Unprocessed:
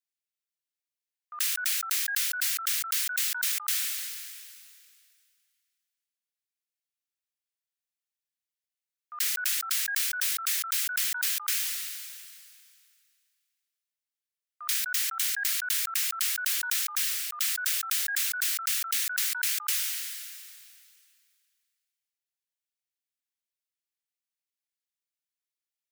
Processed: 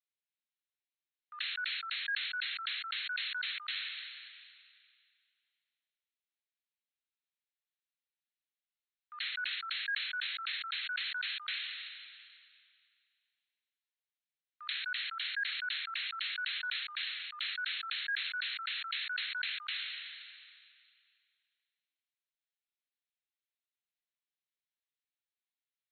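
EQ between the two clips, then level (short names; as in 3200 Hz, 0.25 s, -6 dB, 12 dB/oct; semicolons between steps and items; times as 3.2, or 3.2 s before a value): HPF 1400 Hz 24 dB/oct; brick-wall FIR low-pass 4300 Hz; -1.0 dB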